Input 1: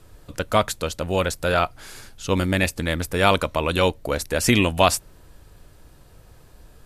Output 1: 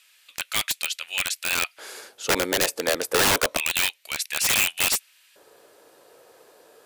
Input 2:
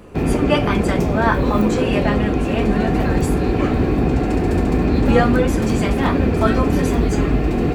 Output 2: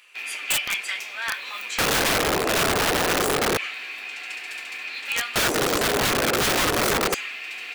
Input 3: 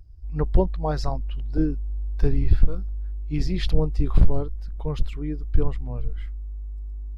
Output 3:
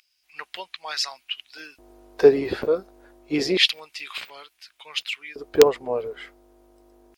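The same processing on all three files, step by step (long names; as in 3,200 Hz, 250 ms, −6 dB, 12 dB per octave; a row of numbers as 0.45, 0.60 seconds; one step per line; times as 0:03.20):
low-shelf EQ 340 Hz −4.5 dB
auto-filter high-pass square 0.28 Hz 450–2,500 Hz
wrap-around overflow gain 15 dB
loudness normalisation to −23 LKFS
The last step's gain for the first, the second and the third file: +1.5, −1.5, +12.0 decibels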